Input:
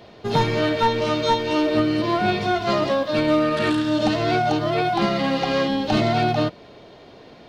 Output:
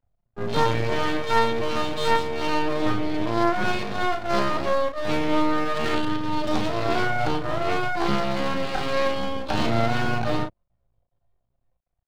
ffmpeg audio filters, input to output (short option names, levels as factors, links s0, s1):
-filter_complex "[0:a]anlmdn=158,acrossover=split=140|620|2200[s0][s1][s2][s3];[s1]aeval=exprs='sgn(val(0))*max(abs(val(0))-0.00501,0)':c=same[s4];[s0][s4][s2][s3]amix=inputs=4:normalize=0,atempo=0.62,aeval=exprs='max(val(0),0)':c=same,asplit=2[s5][s6];[s6]adelay=35,volume=0.473[s7];[s5][s7]amix=inputs=2:normalize=0"